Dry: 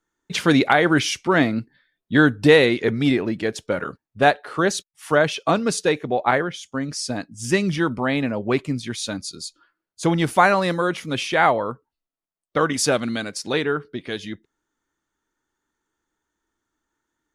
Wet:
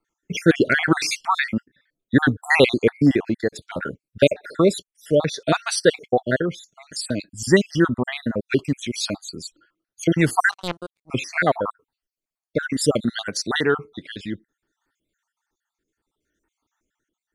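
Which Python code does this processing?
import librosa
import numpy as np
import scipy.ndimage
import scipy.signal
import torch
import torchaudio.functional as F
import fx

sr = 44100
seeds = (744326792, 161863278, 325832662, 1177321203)

y = fx.spec_dropout(x, sr, seeds[0], share_pct=56)
y = fx.rotary(y, sr, hz=0.65)
y = fx.power_curve(y, sr, exponent=3.0, at=(10.51, 11.1))
y = y * librosa.db_to_amplitude(6.0)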